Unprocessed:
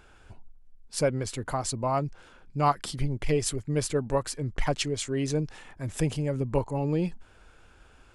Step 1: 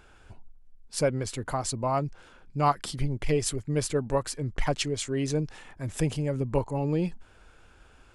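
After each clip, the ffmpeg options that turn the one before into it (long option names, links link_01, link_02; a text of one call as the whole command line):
ffmpeg -i in.wav -af anull out.wav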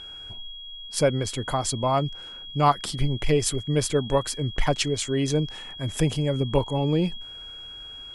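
ffmpeg -i in.wav -af "aeval=exprs='val(0)+0.00794*sin(2*PI*3300*n/s)':channel_layout=same,volume=4dB" out.wav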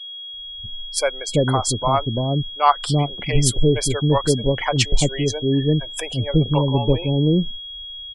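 ffmpeg -i in.wav -filter_complex "[0:a]afftdn=noise_reduction=35:noise_floor=-36,acrossover=split=560[link_01][link_02];[link_01]adelay=340[link_03];[link_03][link_02]amix=inputs=2:normalize=0,volume=6.5dB" out.wav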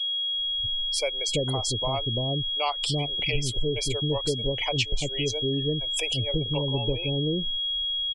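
ffmpeg -i in.wav -filter_complex "[0:a]acrossover=split=3600[link_01][link_02];[link_02]acompressor=threshold=-32dB:ratio=4:attack=1:release=60[link_03];[link_01][link_03]amix=inputs=2:normalize=0,firequalizer=gain_entry='entry(110,0);entry(170,-7);entry(450,0);entry(1600,-17);entry(2400,9);entry(3700,6);entry(5700,9);entry(10000,5)':delay=0.05:min_phase=1,acompressor=threshold=-25dB:ratio=3" out.wav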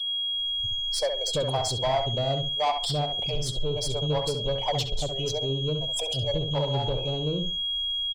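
ffmpeg -i in.wav -filter_complex "[0:a]firequalizer=gain_entry='entry(170,0);entry(280,-8);entry(650,9);entry(960,6);entry(2000,-22);entry(3600,3);entry(5500,-1)':delay=0.05:min_phase=1,asoftclip=type=tanh:threshold=-20dB,asplit=2[link_01][link_02];[link_02]adelay=67,lowpass=frequency=2600:poles=1,volume=-6dB,asplit=2[link_03][link_04];[link_04]adelay=67,lowpass=frequency=2600:poles=1,volume=0.25,asplit=2[link_05][link_06];[link_06]adelay=67,lowpass=frequency=2600:poles=1,volume=0.25[link_07];[link_01][link_03][link_05][link_07]amix=inputs=4:normalize=0" out.wav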